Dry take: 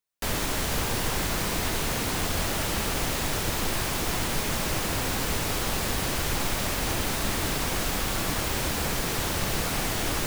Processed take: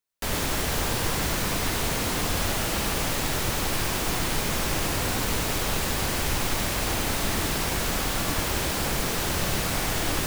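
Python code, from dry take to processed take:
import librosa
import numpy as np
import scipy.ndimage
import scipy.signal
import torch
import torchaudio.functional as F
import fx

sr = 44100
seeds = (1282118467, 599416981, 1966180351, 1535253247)

y = x + 10.0 ** (-4.5 / 20.0) * np.pad(x, (int(98 * sr / 1000.0), 0))[:len(x)]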